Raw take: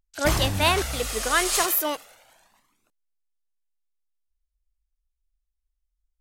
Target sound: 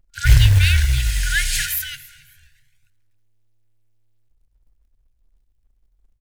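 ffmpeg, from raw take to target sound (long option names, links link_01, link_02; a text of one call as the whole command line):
ffmpeg -i in.wav -filter_complex "[0:a]asoftclip=type=hard:threshold=-17.5dB,bass=frequency=250:gain=10,treble=frequency=4000:gain=-6,asplit=3[link_01][link_02][link_03];[link_02]adelay=273,afreqshift=-110,volume=-21dB[link_04];[link_03]adelay=546,afreqshift=-220,volume=-31.2dB[link_05];[link_01][link_04][link_05]amix=inputs=3:normalize=0,afftfilt=real='re*(1-between(b*sr/4096,140,1400))':imag='im*(1-between(b*sr/4096,140,1400))':win_size=4096:overlap=0.75,asplit=2[link_06][link_07];[link_07]acrusher=bits=3:mode=log:mix=0:aa=0.000001,volume=-4dB[link_08];[link_06][link_08]amix=inputs=2:normalize=0,volume=2dB" out.wav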